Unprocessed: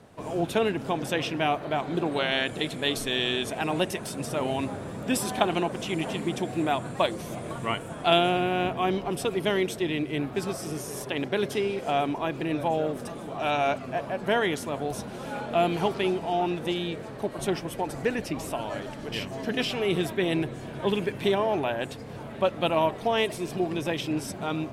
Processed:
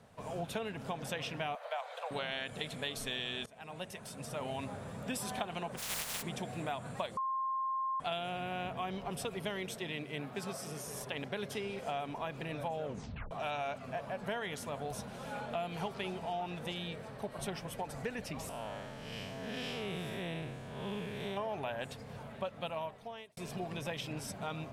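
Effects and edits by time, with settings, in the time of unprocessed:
1.55–2.11 s: steep high-pass 480 Hz 96 dB/octave
3.46–5.23 s: fade in equal-power, from -21.5 dB
5.77–6.21 s: spectral contrast reduction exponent 0.15
7.17–8.00 s: bleep 1.06 kHz -20 dBFS
9.75–10.87 s: high-pass 140 Hz
12.84 s: tape stop 0.47 s
16.77–17.59 s: band-stop 6.8 kHz
18.49–21.37 s: spectral blur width 193 ms
22.16–23.37 s: fade out linear
whole clip: peaking EQ 330 Hz -13.5 dB 0.42 oct; compression 6:1, threshold -28 dBFS; trim -6 dB

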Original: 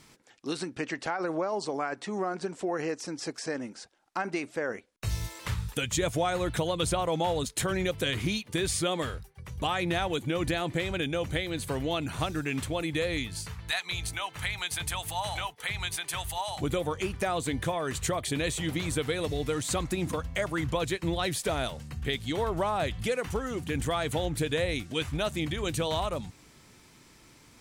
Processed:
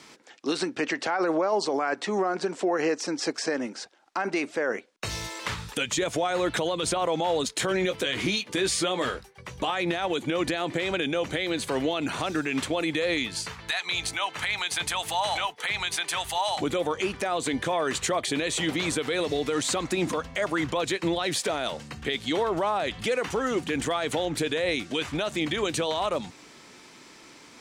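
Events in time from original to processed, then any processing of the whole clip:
7.60–9.72 s: doubling 16 ms -8.5 dB
whole clip: three-band isolator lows -18 dB, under 210 Hz, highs -13 dB, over 7.9 kHz; peak limiter -25.5 dBFS; trim +8.5 dB

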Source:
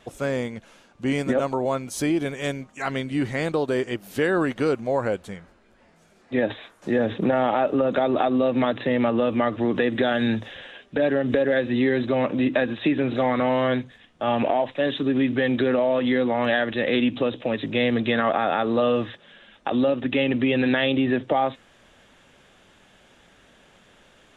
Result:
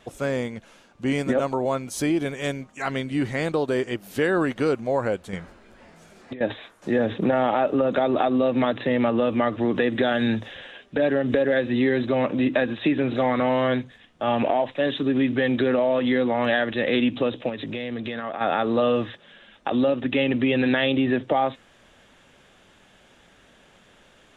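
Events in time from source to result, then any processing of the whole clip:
5.33–6.41 s: compressor with a negative ratio -33 dBFS
17.49–18.41 s: compression, threshold -27 dBFS

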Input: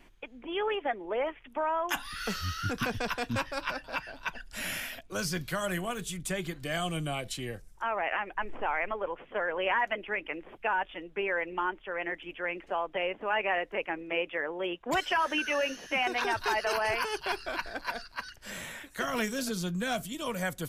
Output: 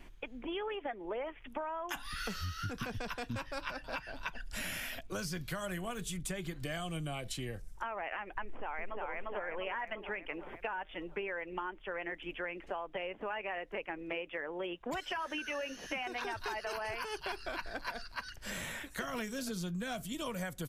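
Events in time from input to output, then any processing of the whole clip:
8.43–9.04 s: echo throw 350 ms, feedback 50%, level -0.5 dB
whole clip: bass shelf 130 Hz +6.5 dB; compression 6:1, threshold -37 dBFS; trim +1 dB

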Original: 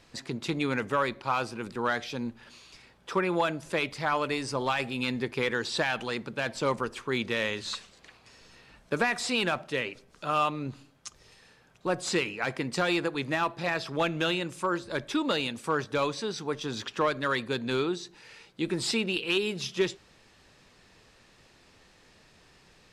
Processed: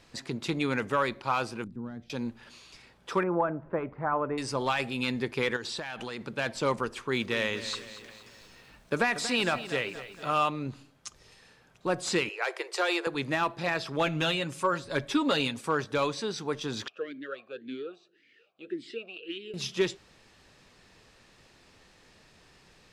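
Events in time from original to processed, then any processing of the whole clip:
1.64–2.10 s: FFT filter 250 Hz 0 dB, 410 Hz -15 dB, 2.3 kHz -28 dB
3.23–4.38 s: low-pass 1.4 kHz 24 dB/octave
5.56–6.21 s: compression 12:1, threshold -32 dBFS
6.90–10.33 s: bit-crushed delay 234 ms, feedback 55%, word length 9-bit, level -13 dB
12.29–13.07 s: steep high-pass 350 Hz 96 dB/octave
14.06–15.61 s: comb 7.3 ms
16.88–19.54 s: talking filter a-i 1.8 Hz

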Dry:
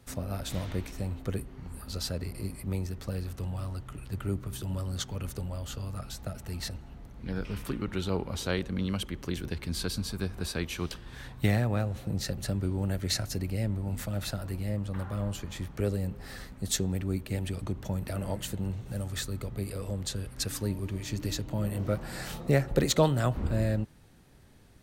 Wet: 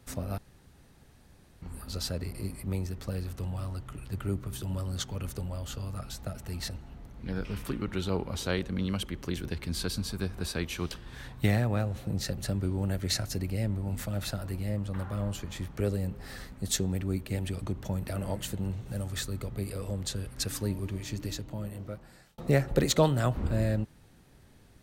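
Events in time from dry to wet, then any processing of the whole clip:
0.38–1.62 s: room tone
20.82–22.38 s: fade out

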